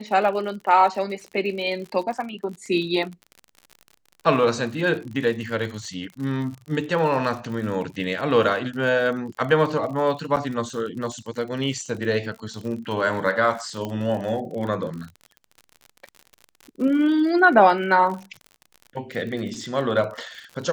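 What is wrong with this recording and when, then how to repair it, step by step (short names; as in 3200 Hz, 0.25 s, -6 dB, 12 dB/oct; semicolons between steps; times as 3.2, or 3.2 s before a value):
crackle 58/s -32 dBFS
10.36–10.37 gap 7.6 ms
13.85 pop -17 dBFS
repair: de-click; interpolate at 10.36, 7.6 ms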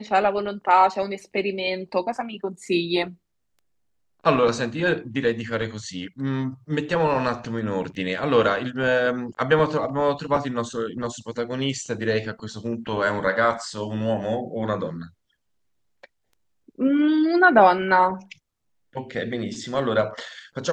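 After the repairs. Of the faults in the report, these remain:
none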